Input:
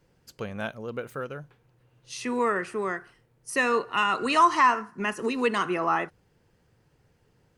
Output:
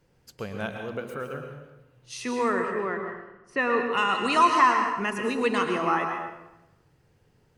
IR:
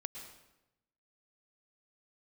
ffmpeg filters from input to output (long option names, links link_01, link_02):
-filter_complex "[0:a]asettb=1/sr,asplit=3[link_01][link_02][link_03];[link_01]atrim=end=2.524[link_04];[link_02]atrim=start=2.52:end=3.91,asetpts=PTS-STARTPTS,afade=type=in:duration=0.004:curve=qsin,afade=type=out:start_time=1.386:duration=0.004:curve=qsin,lowpass=2500[link_05];[link_03]atrim=start=3.906[link_06];[link_04][link_05]acrossfade=duration=0.004:curve1=hsin:curve2=qsin[link_07];[link_07][link_06]acrossfade=duration=0.004:curve1=qsin:curve2=hsin[link_08];[1:a]atrim=start_sample=2205,asetrate=41454,aresample=44100[link_09];[link_08][link_09]afir=irnorm=-1:irlink=0,volume=2.5dB"